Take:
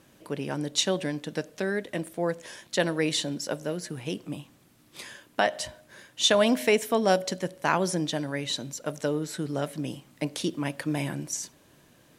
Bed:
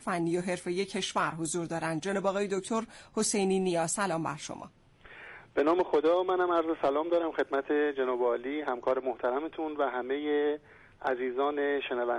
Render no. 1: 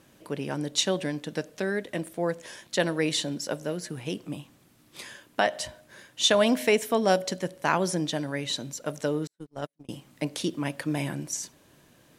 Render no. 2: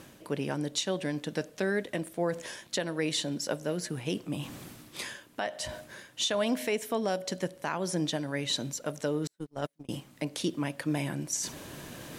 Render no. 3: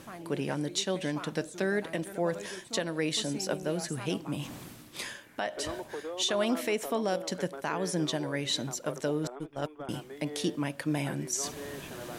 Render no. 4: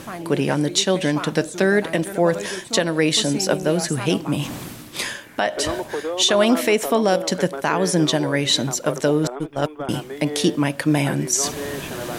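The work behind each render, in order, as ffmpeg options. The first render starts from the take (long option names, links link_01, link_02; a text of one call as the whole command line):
ffmpeg -i in.wav -filter_complex "[0:a]asettb=1/sr,asplit=3[link_01][link_02][link_03];[link_01]atrim=end=9.274[link_04];[link_02]atrim=start=9.27:end=9.89,asetpts=PTS-STARTPTS,afade=type=in:duration=0.004:curve=qsin,afade=type=out:start_time=0.616:duration=0.004:curve=qsin,agate=range=-47dB:threshold=-28dB:ratio=16:release=100:detection=peak[link_05];[link_03]atrim=start=9.886[link_06];[link_04][link_05]acrossfade=duration=0.004:curve1=hsin:curve2=qsin[link_07];[link_07][link_06]acrossfade=duration=0.004:curve1=qsin:curve2=hsin" out.wav
ffmpeg -i in.wav -af "areverse,acompressor=mode=upward:threshold=-30dB:ratio=2.5,areverse,alimiter=limit=-18.5dB:level=0:latency=1:release=354" out.wav
ffmpeg -i in.wav -i bed.wav -filter_complex "[1:a]volume=-13.5dB[link_01];[0:a][link_01]amix=inputs=2:normalize=0" out.wav
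ffmpeg -i in.wav -af "volume=12dB" out.wav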